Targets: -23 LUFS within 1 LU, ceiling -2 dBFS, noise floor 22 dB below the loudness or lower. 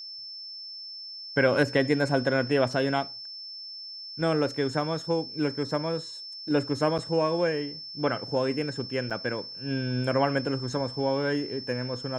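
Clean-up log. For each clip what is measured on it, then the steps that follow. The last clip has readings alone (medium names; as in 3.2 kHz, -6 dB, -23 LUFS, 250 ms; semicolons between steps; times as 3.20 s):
dropouts 2; longest dropout 6.4 ms; steady tone 5.3 kHz; tone level -38 dBFS; loudness -28.5 LUFS; peak level -10.5 dBFS; loudness target -23.0 LUFS
-> interpolate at 6.98/9.10 s, 6.4 ms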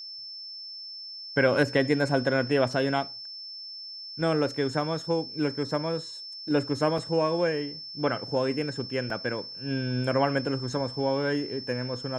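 dropouts 0; steady tone 5.3 kHz; tone level -38 dBFS
-> band-stop 5.3 kHz, Q 30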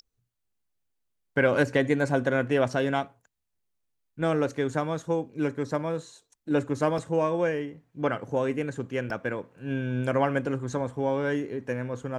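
steady tone not found; loudness -28.0 LUFS; peak level -10.5 dBFS; loudness target -23.0 LUFS
-> trim +5 dB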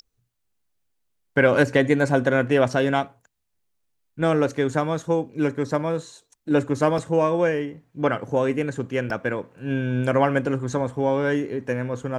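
loudness -23.0 LUFS; peak level -5.5 dBFS; noise floor -74 dBFS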